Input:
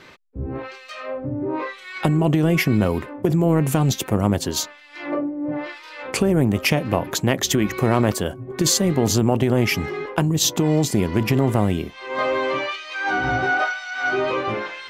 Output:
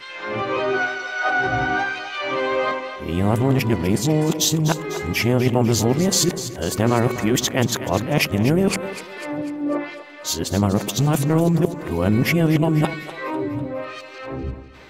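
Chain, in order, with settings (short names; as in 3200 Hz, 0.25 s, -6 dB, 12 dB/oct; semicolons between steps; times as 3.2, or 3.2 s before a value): whole clip reversed; split-band echo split 360 Hz, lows 88 ms, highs 0.248 s, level -12 dB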